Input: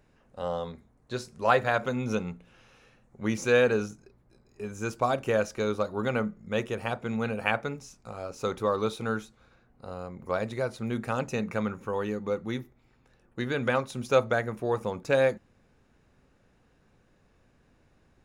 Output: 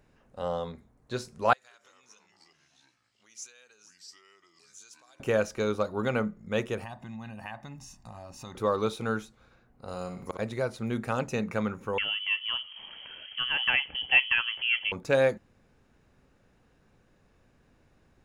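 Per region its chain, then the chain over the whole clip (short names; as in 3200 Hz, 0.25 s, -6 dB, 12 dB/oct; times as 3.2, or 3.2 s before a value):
1.53–5.2 echoes that change speed 0.168 s, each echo -4 st, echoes 3, each echo -6 dB + compressor 10:1, threshold -33 dBFS + band-pass 6700 Hz, Q 1.5
6.84–8.55 comb 1.1 ms, depth 89% + compressor 2.5:1, threshold -44 dBFS
9.88–10.39 bell 8400 Hz +10.5 dB 2.6 oct + flipped gate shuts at -20 dBFS, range -27 dB + flutter echo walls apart 10.4 m, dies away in 0.52 s
11.98–14.92 upward compressor, threshold -30 dBFS + inverted band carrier 3200 Hz + low shelf 320 Hz +6 dB
whole clip: dry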